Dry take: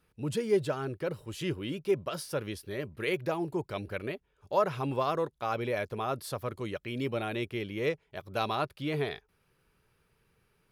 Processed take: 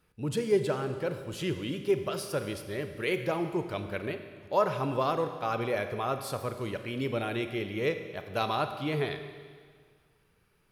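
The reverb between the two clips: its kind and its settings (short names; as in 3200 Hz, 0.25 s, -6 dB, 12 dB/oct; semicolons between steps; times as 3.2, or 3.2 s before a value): Schroeder reverb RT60 1.8 s, combs from 31 ms, DRR 8 dB; gain +1 dB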